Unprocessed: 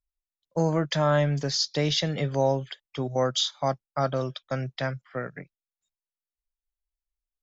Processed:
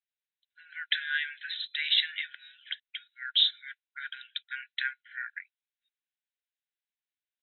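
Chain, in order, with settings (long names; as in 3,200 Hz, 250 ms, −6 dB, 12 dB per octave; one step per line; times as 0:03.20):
linear-phase brick-wall band-pass 1,400–4,100 Hz
level +4.5 dB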